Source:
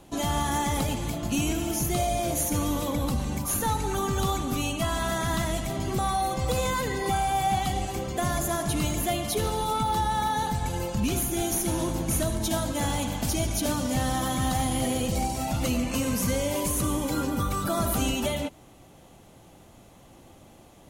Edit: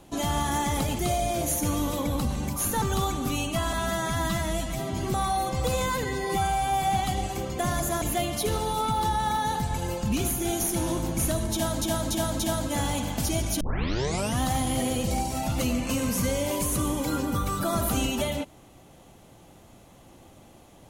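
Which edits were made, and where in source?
0:00.99–0:01.88: remove
0:03.71–0:04.08: remove
0:04.99–0:05.82: time-stretch 1.5×
0:06.89–0:07.41: time-stretch 1.5×
0:08.60–0:08.93: remove
0:12.44–0:12.73: repeat, 4 plays
0:13.65: tape start 0.81 s

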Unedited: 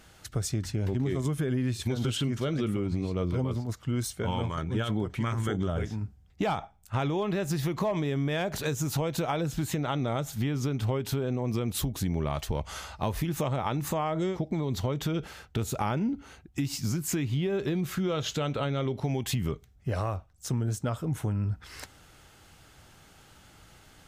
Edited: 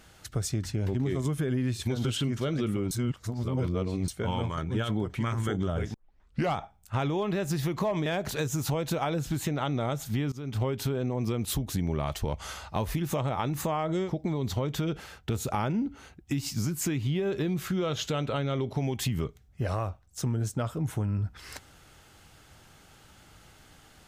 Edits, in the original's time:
0:02.91–0:04.08: reverse
0:05.94: tape start 0.61 s
0:08.06–0:08.33: remove
0:10.59–0:10.87: fade in, from −22 dB

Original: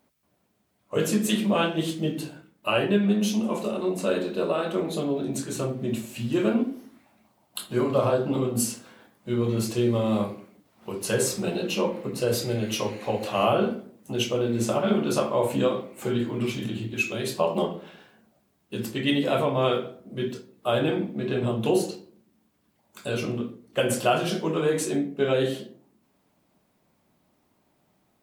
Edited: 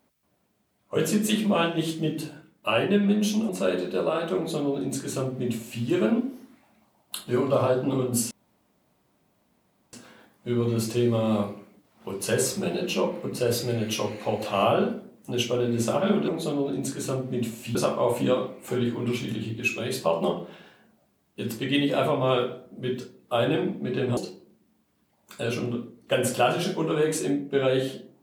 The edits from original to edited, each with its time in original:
0:03.49–0:03.92: remove
0:04.79–0:06.26: duplicate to 0:15.09
0:08.74: splice in room tone 1.62 s
0:21.51–0:21.83: remove

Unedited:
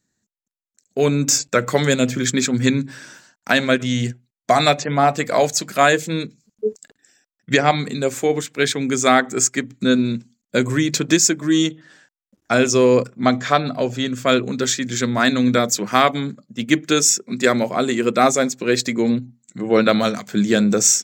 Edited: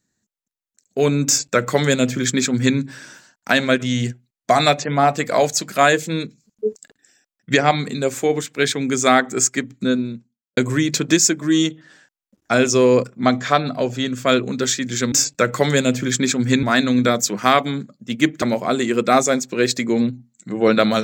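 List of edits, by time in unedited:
0:01.26–0:02.77: duplicate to 0:15.12
0:09.59–0:10.57: fade out and dull
0:16.91–0:17.51: remove

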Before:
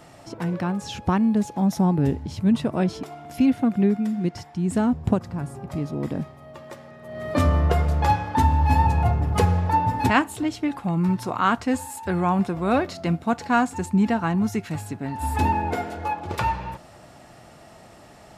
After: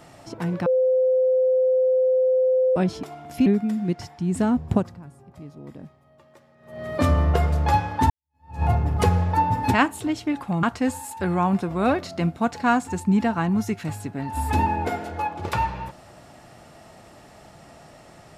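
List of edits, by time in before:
0:00.66–0:02.76: beep over 515 Hz −16 dBFS
0:03.46–0:03.82: remove
0:05.16–0:07.14: duck −13 dB, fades 0.20 s
0:08.46–0:08.99: fade in exponential
0:10.99–0:11.49: remove

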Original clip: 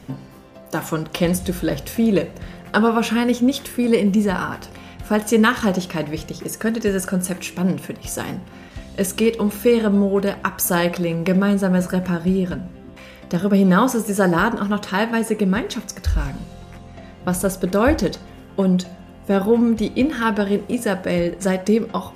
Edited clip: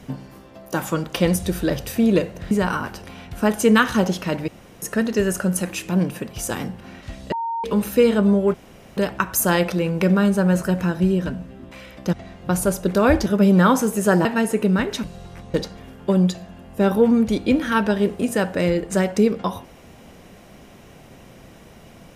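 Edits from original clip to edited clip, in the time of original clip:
0:02.51–0:04.19: remove
0:06.16–0:06.50: fill with room tone
0:09.00–0:09.32: beep over 920 Hz −22.5 dBFS
0:10.22: splice in room tone 0.43 s
0:14.37–0:15.02: remove
0:15.81–0:16.41: remove
0:16.91–0:18.04: move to 0:13.38

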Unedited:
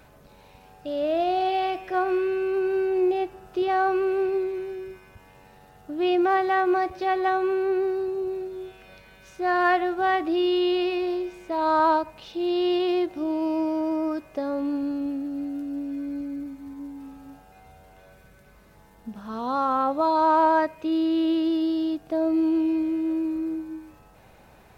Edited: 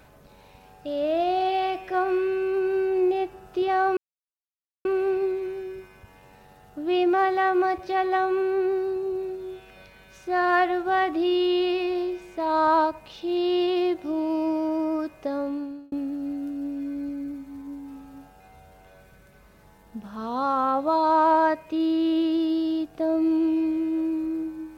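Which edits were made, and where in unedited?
0:03.97: splice in silence 0.88 s
0:14.51–0:15.04: fade out

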